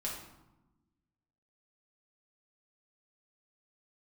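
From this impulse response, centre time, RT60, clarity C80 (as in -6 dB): 45 ms, 1.0 s, 6.0 dB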